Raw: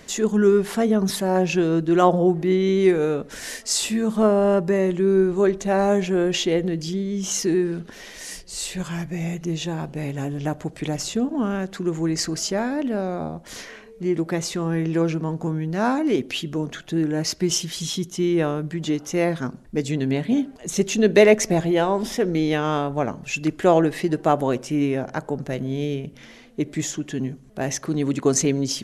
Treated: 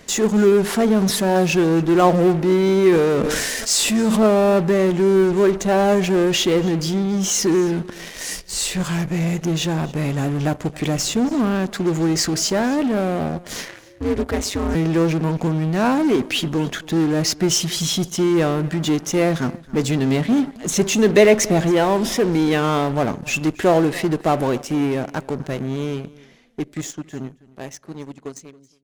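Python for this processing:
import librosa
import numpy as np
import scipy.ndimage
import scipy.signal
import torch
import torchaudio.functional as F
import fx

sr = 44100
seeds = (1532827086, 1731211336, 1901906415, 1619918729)

p1 = fx.fade_out_tail(x, sr, length_s=6.04)
p2 = fx.ring_mod(p1, sr, carrier_hz=100.0, at=(13.68, 14.75))
p3 = fx.fuzz(p2, sr, gain_db=32.0, gate_db=-39.0)
p4 = p2 + F.gain(torch.from_numpy(p3), -11.0).numpy()
p5 = p4 + 10.0 ** (-21.5 / 20.0) * np.pad(p4, (int(274 * sr / 1000.0), 0))[:len(p4)]
y = fx.sustainer(p5, sr, db_per_s=21.0, at=(2.89, 4.27))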